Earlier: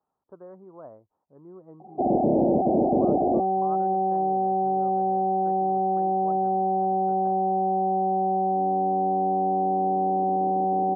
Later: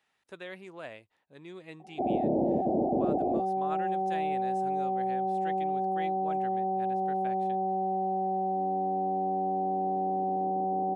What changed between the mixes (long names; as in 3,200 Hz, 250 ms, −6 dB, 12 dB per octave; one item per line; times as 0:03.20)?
background −6.0 dB
master: remove Butterworth low-pass 1,200 Hz 48 dB per octave